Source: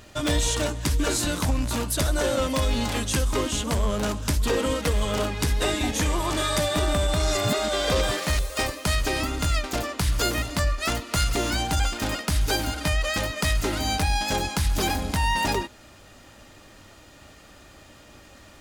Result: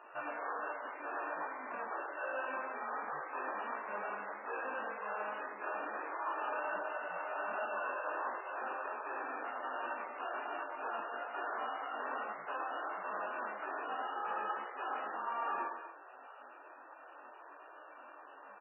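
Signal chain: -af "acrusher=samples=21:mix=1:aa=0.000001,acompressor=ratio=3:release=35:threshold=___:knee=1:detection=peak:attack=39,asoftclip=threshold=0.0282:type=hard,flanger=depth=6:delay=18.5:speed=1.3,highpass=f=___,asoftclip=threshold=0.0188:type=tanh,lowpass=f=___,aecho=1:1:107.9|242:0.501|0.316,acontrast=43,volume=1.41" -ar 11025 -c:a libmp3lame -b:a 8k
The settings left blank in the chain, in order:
0.02, 1100, 1500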